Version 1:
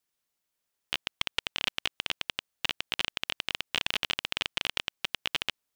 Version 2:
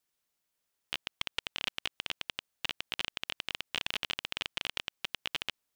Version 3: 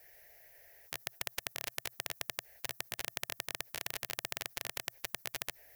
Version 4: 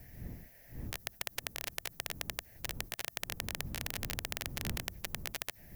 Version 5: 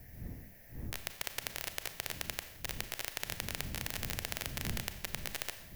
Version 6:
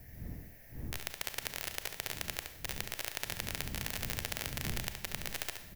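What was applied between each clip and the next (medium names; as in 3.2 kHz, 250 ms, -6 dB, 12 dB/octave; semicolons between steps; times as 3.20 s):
peak limiter -14.5 dBFS, peak gain reduction 5 dB
FFT filter 120 Hz 0 dB, 210 Hz -28 dB, 380 Hz -4 dB, 670 Hz +6 dB, 1.2 kHz -21 dB, 1.8 kHz +7 dB, 3.4 kHz -16 dB, 5.6 kHz -9 dB, 8.6 kHz -17 dB, 12 kHz -1 dB; spectrum-flattening compressor 4:1; trim +8.5 dB
wind noise 130 Hz -47 dBFS; companded quantiser 8-bit
Schroeder reverb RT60 0.9 s, combs from 28 ms, DRR 8.5 dB
delay 70 ms -7.5 dB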